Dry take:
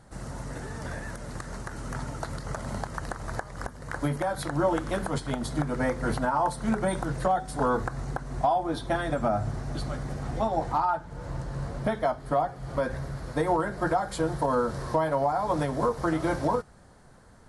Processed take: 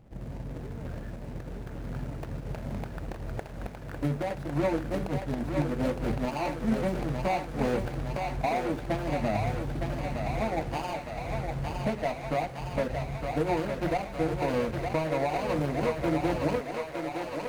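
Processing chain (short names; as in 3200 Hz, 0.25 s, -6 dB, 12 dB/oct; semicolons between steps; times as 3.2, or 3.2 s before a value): median filter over 41 samples; thinning echo 0.912 s, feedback 78%, high-pass 400 Hz, level -4 dB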